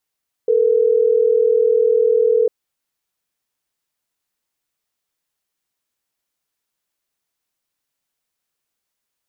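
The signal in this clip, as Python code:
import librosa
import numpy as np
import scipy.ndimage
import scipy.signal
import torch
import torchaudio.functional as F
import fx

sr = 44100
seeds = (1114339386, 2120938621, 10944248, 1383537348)

y = fx.call_progress(sr, length_s=3.12, kind='ringback tone', level_db=-14.5)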